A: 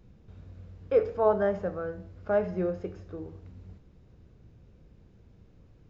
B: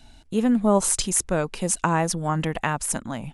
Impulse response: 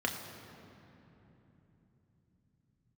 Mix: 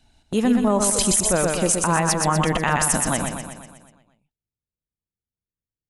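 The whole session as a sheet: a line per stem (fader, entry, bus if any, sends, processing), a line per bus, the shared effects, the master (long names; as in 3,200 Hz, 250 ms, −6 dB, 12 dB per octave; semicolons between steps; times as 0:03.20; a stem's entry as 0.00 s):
−5.5 dB, 0.00 s, no send, no echo send, expander for the loud parts 2.5 to 1, over −40 dBFS
+1.5 dB, 0.00 s, no send, echo send −6 dB, noise gate −39 dBFS, range −13 dB; harmonic and percussive parts rebalanced percussive +6 dB; automatic gain control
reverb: not used
echo: repeating echo 122 ms, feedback 56%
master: brickwall limiter −9 dBFS, peak gain reduction 10.5 dB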